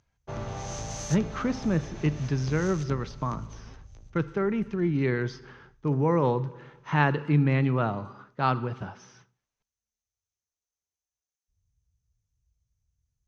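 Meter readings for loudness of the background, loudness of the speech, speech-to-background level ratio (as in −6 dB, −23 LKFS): −39.5 LKFS, −27.5 LKFS, 12.0 dB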